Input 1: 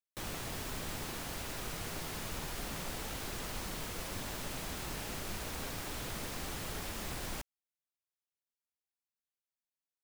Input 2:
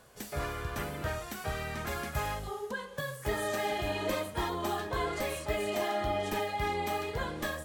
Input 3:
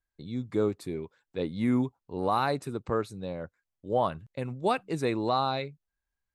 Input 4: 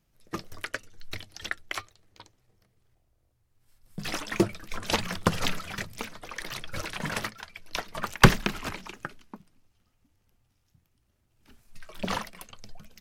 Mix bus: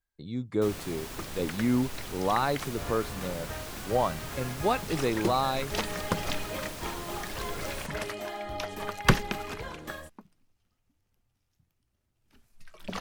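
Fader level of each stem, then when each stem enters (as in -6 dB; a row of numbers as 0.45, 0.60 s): 0.0, -5.5, 0.0, -5.5 dB; 0.45, 2.45, 0.00, 0.85 s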